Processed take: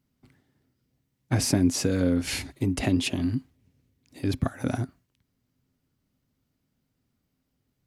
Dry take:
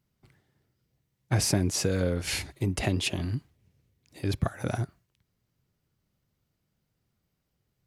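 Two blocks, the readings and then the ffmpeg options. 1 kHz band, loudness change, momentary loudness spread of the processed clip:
0.0 dB, +2.5 dB, 10 LU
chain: -af "equalizer=frequency=260:width_type=o:width=0.27:gain=13.5"

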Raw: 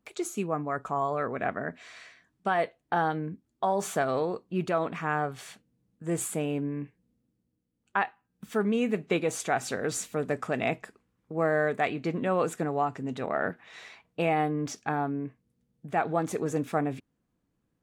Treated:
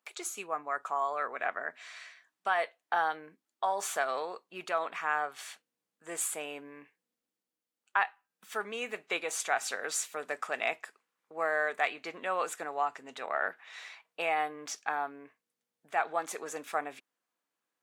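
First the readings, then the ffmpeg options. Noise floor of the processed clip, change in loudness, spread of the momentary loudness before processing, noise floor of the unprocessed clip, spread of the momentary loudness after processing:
below −85 dBFS, −3.5 dB, 11 LU, −78 dBFS, 15 LU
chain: -af "highpass=850,volume=1dB"

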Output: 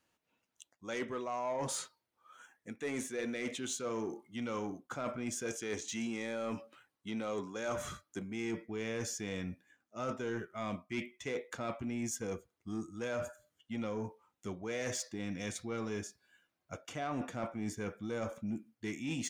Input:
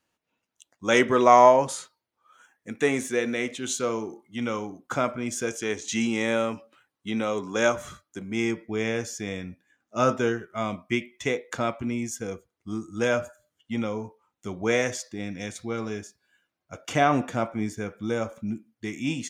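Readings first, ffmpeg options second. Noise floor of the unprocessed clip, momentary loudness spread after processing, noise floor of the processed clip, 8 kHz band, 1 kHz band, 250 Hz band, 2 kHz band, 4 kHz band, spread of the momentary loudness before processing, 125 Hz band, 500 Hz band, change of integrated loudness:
−84 dBFS, 8 LU, below −85 dBFS, −7.0 dB, −18.0 dB, −10.5 dB, −13.5 dB, −10.5 dB, 14 LU, −9.5 dB, −14.0 dB, −13.0 dB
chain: -af "areverse,acompressor=threshold=-32dB:ratio=8,areverse,asoftclip=type=tanh:threshold=-27.5dB,volume=-1dB"

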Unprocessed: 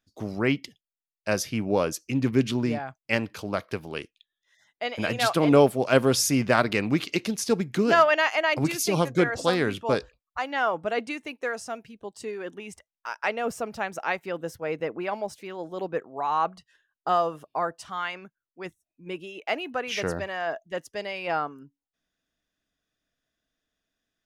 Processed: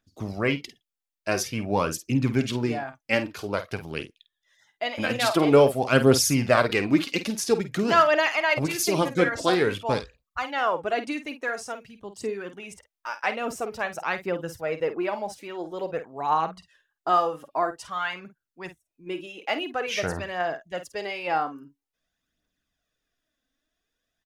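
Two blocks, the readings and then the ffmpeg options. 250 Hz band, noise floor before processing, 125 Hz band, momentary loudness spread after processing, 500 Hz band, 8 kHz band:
0.0 dB, below −85 dBFS, +1.0 dB, 16 LU, +1.0 dB, +1.5 dB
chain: -filter_complex "[0:a]aphaser=in_gain=1:out_gain=1:delay=4:decay=0.48:speed=0.49:type=triangular,asplit=2[link_01][link_02];[link_02]adelay=50,volume=-11dB[link_03];[link_01][link_03]amix=inputs=2:normalize=0"

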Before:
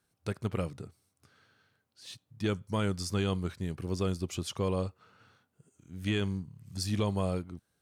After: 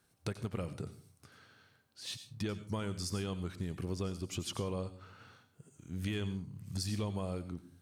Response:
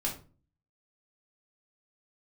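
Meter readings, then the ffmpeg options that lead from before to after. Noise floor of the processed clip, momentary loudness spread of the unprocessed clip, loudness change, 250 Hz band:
−72 dBFS, 17 LU, −6.0 dB, −5.5 dB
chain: -filter_complex "[0:a]acompressor=threshold=-39dB:ratio=6,asplit=2[link_01][link_02];[1:a]atrim=start_sample=2205,highshelf=frequency=2900:gain=9.5,adelay=88[link_03];[link_02][link_03]afir=irnorm=-1:irlink=0,volume=-20dB[link_04];[link_01][link_04]amix=inputs=2:normalize=0,volume=4.5dB"

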